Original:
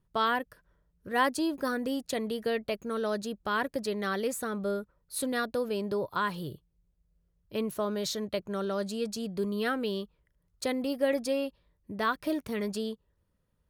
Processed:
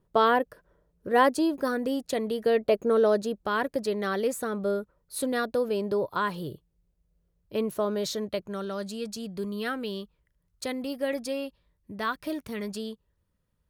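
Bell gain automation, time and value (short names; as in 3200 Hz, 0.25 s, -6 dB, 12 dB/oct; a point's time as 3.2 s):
bell 480 Hz 2.1 oct
1.08 s +11 dB
1.54 s +4.5 dB
2.37 s +4.5 dB
2.83 s +14 dB
3.51 s +4.5 dB
8.15 s +4.5 dB
8.64 s -2.5 dB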